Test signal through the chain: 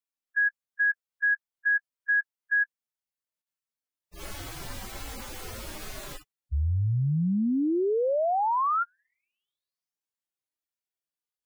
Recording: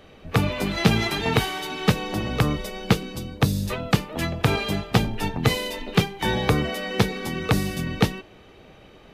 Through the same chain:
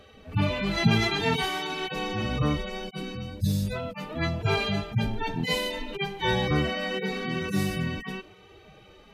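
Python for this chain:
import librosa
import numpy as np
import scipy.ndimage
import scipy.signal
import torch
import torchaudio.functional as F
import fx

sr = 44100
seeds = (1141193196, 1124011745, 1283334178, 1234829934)

y = fx.hpss_only(x, sr, part='harmonic')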